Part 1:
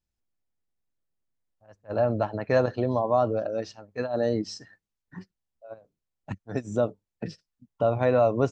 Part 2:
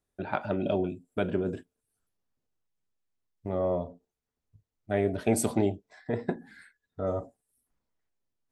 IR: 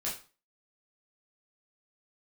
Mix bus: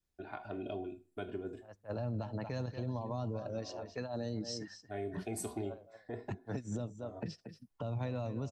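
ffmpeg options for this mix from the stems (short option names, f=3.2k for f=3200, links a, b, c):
-filter_complex "[0:a]volume=-1.5dB,asplit=3[a][b][c];[b]volume=-14dB[d];[1:a]aecho=1:1:2.8:0.65,volume=-13.5dB,asplit=2[e][f];[f]volume=-11dB[g];[c]apad=whole_len=375491[h];[e][h]sidechaincompress=threshold=-35dB:ratio=8:attack=16:release=702[i];[2:a]atrim=start_sample=2205[j];[g][j]afir=irnorm=-1:irlink=0[k];[d]aecho=0:1:231:1[l];[a][i][k][l]amix=inputs=4:normalize=0,adynamicequalizer=threshold=0.00398:dfrequency=920:dqfactor=4.3:tfrequency=920:tqfactor=4.3:attack=5:release=100:ratio=0.375:range=3.5:mode=boostabove:tftype=bell,acrossover=split=240|3000[m][n][o];[n]acompressor=threshold=-38dB:ratio=6[p];[m][p][o]amix=inputs=3:normalize=0,alimiter=level_in=5dB:limit=-24dB:level=0:latency=1:release=187,volume=-5dB"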